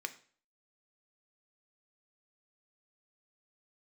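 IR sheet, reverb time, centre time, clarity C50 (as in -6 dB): 0.45 s, 5 ms, 15.0 dB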